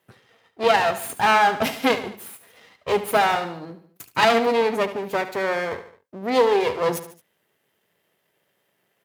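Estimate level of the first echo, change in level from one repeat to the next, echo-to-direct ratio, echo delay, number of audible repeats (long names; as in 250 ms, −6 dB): −13.0 dB, −6.0 dB, −12.0 dB, 73 ms, 3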